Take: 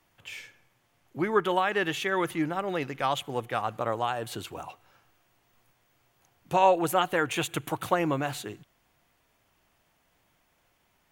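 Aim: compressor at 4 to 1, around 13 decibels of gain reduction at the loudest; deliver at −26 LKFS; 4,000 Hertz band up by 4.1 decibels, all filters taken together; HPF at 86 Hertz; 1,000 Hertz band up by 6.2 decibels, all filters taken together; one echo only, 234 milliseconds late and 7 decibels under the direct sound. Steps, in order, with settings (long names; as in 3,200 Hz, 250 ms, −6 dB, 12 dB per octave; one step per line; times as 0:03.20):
high-pass filter 86 Hz
parametric band 1,000 Hz +7.5 dB
parametric band 4,000 Hz +5 dB
downward compressor 4 to 1, threshold −26 dBFS
single-tap delay 234 ms −7 dB
level +4.5 dB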